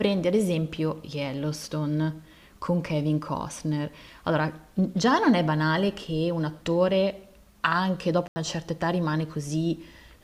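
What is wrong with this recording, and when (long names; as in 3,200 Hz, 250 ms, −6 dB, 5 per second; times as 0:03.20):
0:08.28–0:08.36: drop-out 80 ms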